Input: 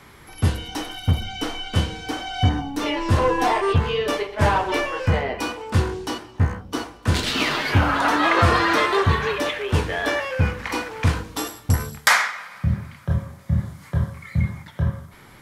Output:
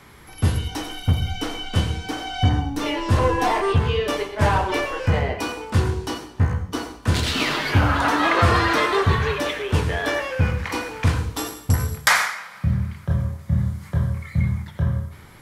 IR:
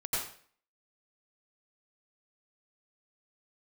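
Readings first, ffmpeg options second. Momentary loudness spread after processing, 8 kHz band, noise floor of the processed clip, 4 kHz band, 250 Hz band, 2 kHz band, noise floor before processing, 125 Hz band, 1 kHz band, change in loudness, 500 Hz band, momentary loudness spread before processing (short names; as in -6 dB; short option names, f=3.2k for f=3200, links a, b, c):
9 LU, +0.5 dB, -43 dBFS, -0.5 dB, 0.0 dB, -0.5 dB, -47 dBFS, +1.5 dB, -0.5 dB, 0.0 dB, -0.5 dB, 10 LU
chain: -filter_complex "[0:a]asplit=2[a][b];[b]equalizer=f=1.3k:w=0.31:g=-9.5[c];[1:a]atrim=start_sample=2205[d];[c][d]afir=irnorm=-1:irlink=0,volume=-9dB[e];[a][e]amix=inputs=2:normalize=0,volume=-1.5dB"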